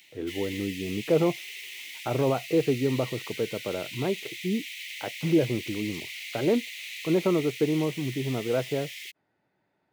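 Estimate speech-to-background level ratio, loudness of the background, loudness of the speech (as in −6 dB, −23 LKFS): 9.0 dB, −37.5 LKFS, −28.5 LKFS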